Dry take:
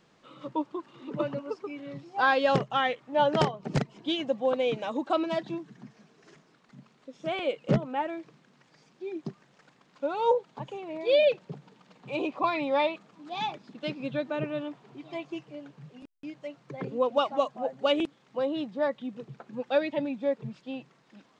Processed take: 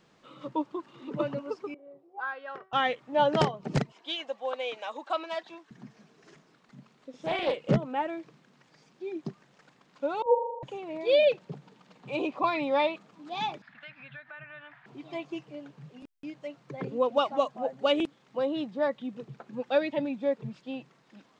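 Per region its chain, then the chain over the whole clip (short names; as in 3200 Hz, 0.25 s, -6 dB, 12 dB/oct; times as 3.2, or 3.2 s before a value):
1.74–2.73 auto-wah 500–1400 Hz, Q 3, up, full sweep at -24.5 dBFS + bell 380 Hz +9.5 dB 1.1 oct + resonator 380 Hz, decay 0.42 s
3.92–5.71 HPF 750 Hz + high shelf 5700 Hz -3.5 dB
7.1–7.69 doubler 40 ms -4 dB + Doppler distortion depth 0.28 ms
10.22–10.63 sine-wave speech + inverse Chebyshev low-pass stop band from 2800 Hz, stop band 60 dB + flutter echo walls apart 6.8 m, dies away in 1.1 s
13.62–14.86 EQ curve 110 Hz 0 dB, 220 Hz -16 dB, 440 Hz -26 dB, 660 Hz -5 dB, 1100 Hz -1 dB, 1700 Hz +15 dB, 2700 Hz +1 dB, 6000 Hz -14 dB + compressor 3:1, threshold -46 dBFS
whole clip: dry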